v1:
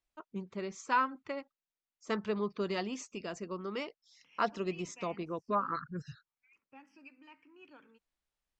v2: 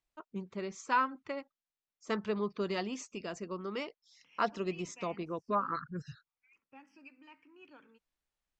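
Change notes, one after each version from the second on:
no change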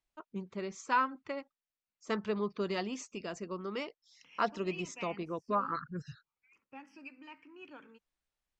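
second voice +5.5 dB

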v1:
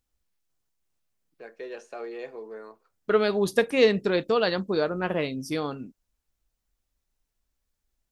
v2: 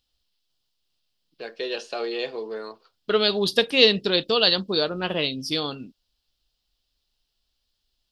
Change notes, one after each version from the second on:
first voice +7.5 dB; master: add high-order bell 3.8 kHz +14.5 dB 1.1 oct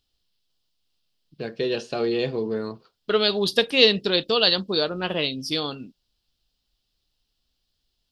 first voice: remove high-pass 520 Hz 12 dB/octave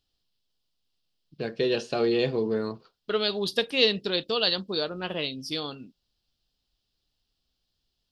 second voice -5.5 dB

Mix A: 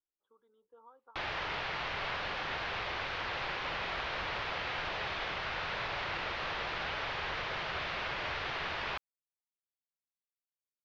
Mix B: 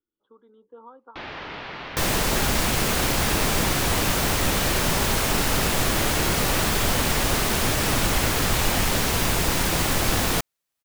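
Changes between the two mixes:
speech +10.5 dB; second sound: unmuted; master: add peaking EQ 250 Hz +11 dB 1.2 oct

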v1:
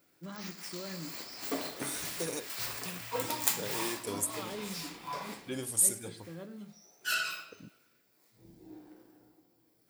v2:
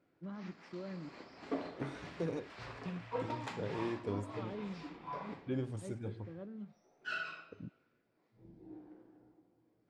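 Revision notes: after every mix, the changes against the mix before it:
first voice: send -11.0 dB; second voice: add bass shelf 170 Hz +11 dB; master: add tape spacing loss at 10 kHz 39 dB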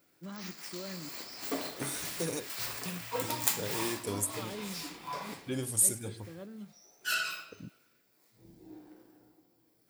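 master: remove tape spacing loss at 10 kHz 39 dB

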